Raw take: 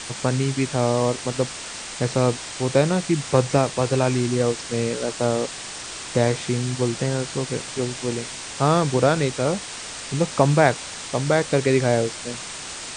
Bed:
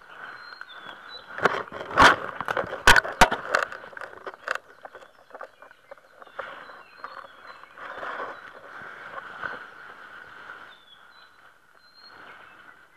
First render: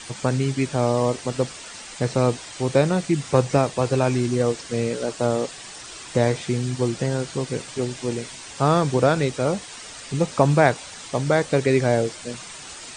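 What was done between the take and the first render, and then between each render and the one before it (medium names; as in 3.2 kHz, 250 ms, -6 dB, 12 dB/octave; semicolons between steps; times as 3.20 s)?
noise reduction 8 dB, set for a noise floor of -35 dBFS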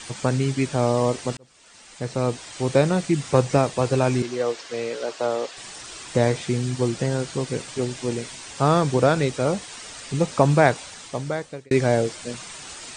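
1.37–2.69 s: fade in; 4.22–5.57 s: three-band isolator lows -17 dB, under 350 Hz, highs -15 dB, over 6.7 kHz; 10.79–11.71 s: fade out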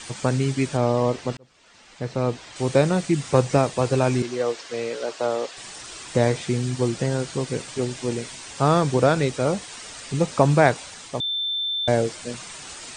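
0.77–2.56 s: distance through air 90 m; 11.20–11.88 s: bleep 3.55 kHz -23 dBFS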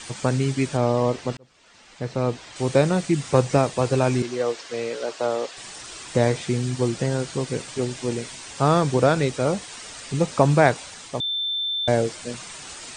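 no audible change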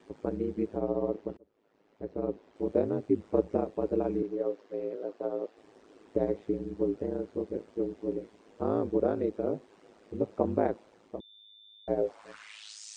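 band-pass sweep 370 Hz -> 6 kHz, 11.93–12.81 s; ring modulator 53 Hz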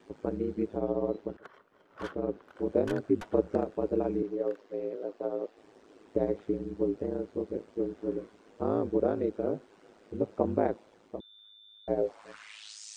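add bed -29.5 dB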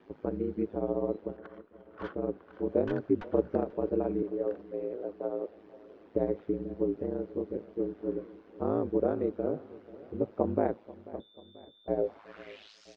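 distance through air 250 m; feedback delay 488 ms, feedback 55%, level -19.5 dB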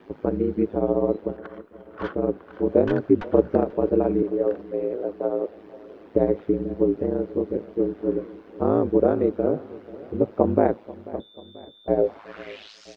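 trim +9 dB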